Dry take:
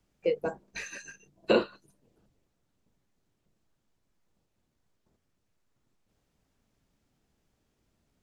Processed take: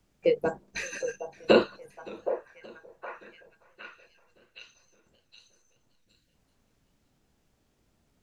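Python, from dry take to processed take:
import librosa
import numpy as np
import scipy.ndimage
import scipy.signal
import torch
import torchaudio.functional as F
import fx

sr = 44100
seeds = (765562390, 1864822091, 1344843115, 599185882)

y = fx.spec_erase(x, sr, start_s=5.9, length_s=0.43, low_hz=350.0, high_hz=1400.0)
y = fx.echo_stepped(y, sr, ms=767, hz=660.0, octaves=0.7, feedback_pct=70, wet_db=-7.5)
y = fx.echo_warbled(y, sr, ms=572, feedback_pct=54, rate_hz=2.8, cents=127, wet_db=-23)
y = y * 10.0 ** (4.0 / 20.0)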